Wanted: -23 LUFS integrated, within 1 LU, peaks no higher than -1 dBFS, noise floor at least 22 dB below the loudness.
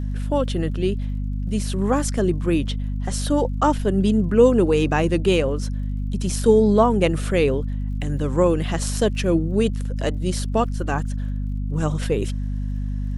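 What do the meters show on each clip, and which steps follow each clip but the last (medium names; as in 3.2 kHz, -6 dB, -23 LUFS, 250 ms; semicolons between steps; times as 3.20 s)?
tick rate 54 per s; hum 50 Hz; highest harmonic 250 Hz; hum level -23 dBFS; loudness -21.5 LUFS; peak level -3.5 dBFS; loudness target -23.0 LUFS
-> de-click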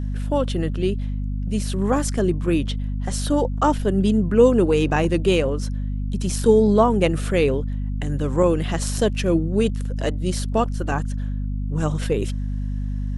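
tick rate 0 per s; hum 50 Hz; highest harmonic 250 Hz; hum level -23 dBFS
-> hum notches 50/100/150/200/250 Hz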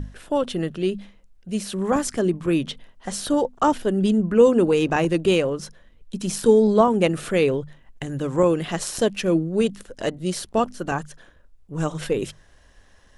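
hum not found; loudness -22.0 LUFS; peak level -4.0 dBFS; loudness target -23.0 LUFS
-> trim -1 dB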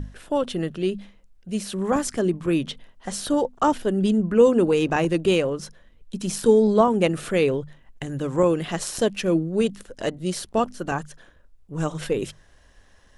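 loudness -23.0 LUFS; peak level -5.0 dBFS; noise floor -54 dBFS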